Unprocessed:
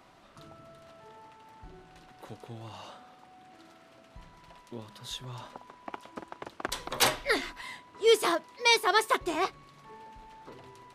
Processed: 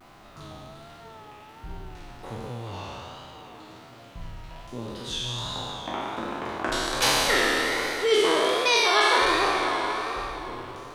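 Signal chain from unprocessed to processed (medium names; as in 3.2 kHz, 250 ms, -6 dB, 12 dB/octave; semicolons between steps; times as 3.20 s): spectral sustain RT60 2.74 s; Bessel low-pass 8.3 kHz, order 2; bass shelf 77 Hz +8.5 dB; in parallel at +3 dB: compression, threshold -30 dBFS, peak gain reduction 14.5 dB; on the sum: word length cut 10-bit, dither none; flange 0.44 Hz, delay 8 ms, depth 9.4 ms, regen -64%; on a send: repeats whose band climbs or falls 347 ms, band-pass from 2.9 kHz, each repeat -1.4 oct, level -6.5 dB; on the sum: vibrato 1.3 Hz 81 cents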